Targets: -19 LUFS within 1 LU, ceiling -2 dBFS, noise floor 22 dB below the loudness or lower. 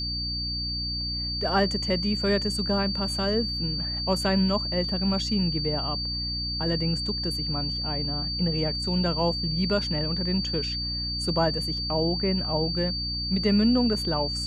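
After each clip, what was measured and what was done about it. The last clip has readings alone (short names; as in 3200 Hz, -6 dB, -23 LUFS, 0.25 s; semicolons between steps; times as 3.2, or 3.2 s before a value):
hum 60 Hz; harmonics up to 300 Hz; hum level -32 dBFS; steady tone 4600 Hz; tone level -29 dBFS; loudness -25.5 LUFS; peak -9.5 dBFS; loudness target -19.0 LUFS
-> de-hum 60 Hz, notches 5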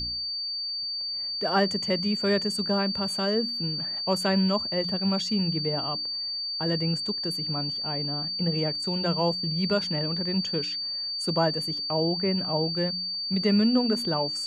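hum none; steady tone 4600 Hz; tone level -29 dBFS
-> notch 4600 Hz, Q 30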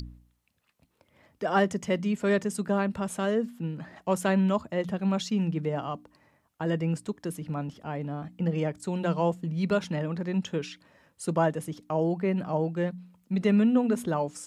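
steady tone none; loudness -28.5 LUFS; peak -10.5 dBFS; loudness target -19.0 LUFS
-> gain +9.5 dB; limiter -2 dBFS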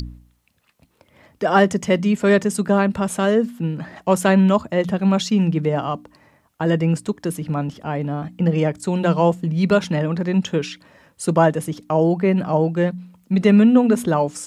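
loudness -19.5 LUFS; peak -2.0 dBFS; noise floor -62 dBFS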